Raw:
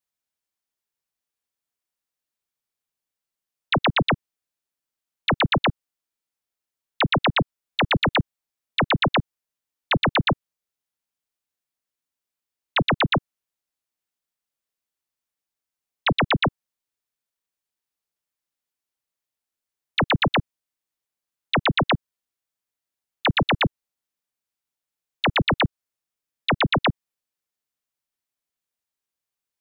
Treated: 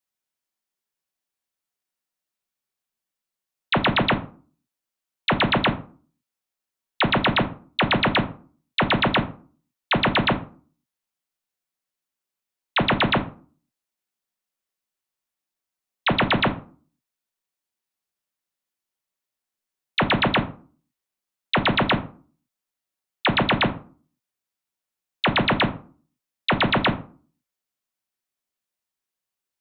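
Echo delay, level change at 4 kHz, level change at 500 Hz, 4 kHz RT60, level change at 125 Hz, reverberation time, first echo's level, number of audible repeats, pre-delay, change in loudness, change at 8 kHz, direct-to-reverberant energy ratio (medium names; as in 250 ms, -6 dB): no echo, +0.5 dB, +1.0 dB, 0.25 s, -1.0 dB, 0.40 s, no echo, no echo, 5 ms, +1.0 dB, no reading, 6.0 dB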